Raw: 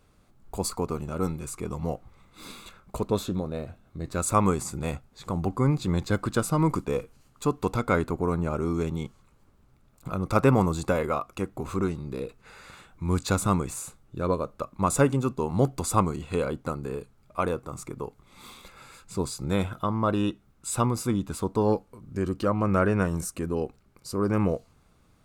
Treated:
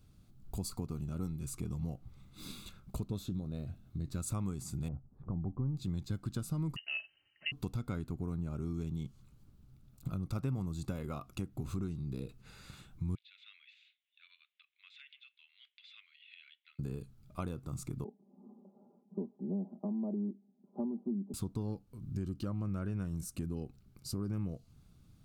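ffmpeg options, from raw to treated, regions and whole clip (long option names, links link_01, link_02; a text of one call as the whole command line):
ffmpeg -i in.wav -filter_complex "[0:a]asettb=1/sr,asplit=3[link_01][link_02][link_03];[link_01]atrim=end=4.884[link_04];[link_02]atrim=start=4.88:end=5.77,asetpts=PTS-STARTPTS,afade=type=in:duration=0.004:curve=qsin,afade=type=out:start_time=0.886:duration=0.004:curve=qsin,aeval=exprs='if(lt(val(0),0),0.708*val(0),val(0))':channel_layout=same,lowpass=frequency=1100:width=0.5412,lowpass=frequency=1100:width=1.3066[link_05];[link_03]atrim=start=5.766[link_06];[link_04][link_05]acrossfade=duration=0.004:curve1=hsin:curve2=qsin[link_07];[link_07][link_06]acrossfade=duration=0.004:curve1=qsin:curve2=hsin,asettb=1/sr,asplit=3[link_08][link_09][link_10];[link_08]atrim=end=6.764[link_11];[link_09]atrim=start=6.76:end=7.52,asetpts=PTS-STARTPTS,afade=type=in:duration=0.004:curve=qsin,afade=type=out:start_time=0.756:duration=0.004:curve=qsin,highpass=frequency=270:poles=1,aecho=1:1:4:0.56,atrim=end_sample=33516,lowpass=frequency=2600:width_type=q:width=0.5098,lowpass=frequency=2600:width_type=q:width=0.6013,lowpass=frequency=2600:width_type=q:width=0.9,lowpass=frequency=2600:width_type=q:width=2.563,afreqshift=-3100[link_12];[link_10]atrim=start=7.516[link_13];[link_11][link_12]acrossfade=duration=0.004:curve1=hsin:curve2=qsin[link_14];[link_14][link_13]acrossfade=duration=0.004:curve1=qsin:curve2=hsin,asettb=1/sr,asplit=3[link_15][link_16][link_17];[link_15]atrim=end=13.154[link_18];[link_16]atrim=start=13.15:end=16.79,asetpts=PTS-STARTPTS,afade=type=in:duration=0.004:curve=qsin,afade=type=out:start_time=3.636:duration=0.004:curve=qsin,asuperpass=centerf=2600:order=8:qfactor=1.5,acompressor=threshold=-46dB:ratio=2.5:attack=3.2:release=140:knee=1:detection=peak[link_19];[link_17]atrim=start=16.786[link_20];[link_18][link_19]acrossfade=duration=0.004:curve1=hsin:curve2=qsin[link_21];[link_21][link_20]acrossfade=duration=0.004:curve1=qsin:curve2=hsin,asettb=1/sr,asplit=3[link_22][link_23][link_24];[link_22]atrim=end=18.044[link_25];[link_23]atrim=start=18.04:end=21.34,asetpts=PTS-STARTPTS,afade=type=in:duration=0.004:curve=qsin,afade=type=out:start_time=3.296:duration=0.004:curve=qsin,asuperpass=centerf=410:order=12:qfactor=0.64,aecho=1:1:5:0.86,atrim=end_sample=145530[link_26];[link_24]atrim=start=21.336[link_27];[link_25][link_26]acrossfade=duration=0.004:curve1=hsin:curve2=qsin[link_28];[link_28][link_27]acrossfade=duration=0.004:curve1=qsin:curve2=hsin,equalizer=frequency=125:width_type=o:width=1:gain=5,equalizer=frequency=500:width_type=o:width=1:gain=-10,equalizer=frequency=1000:width_type=o:width=1:gain=-10,equalizer=frequency=2000:width_type=o:width=1:gain=-9,equalizer=frequency=8000:width_type=o:width=1:gain=-5,acompressor=threshold=-35dB:ratio=4" out.wav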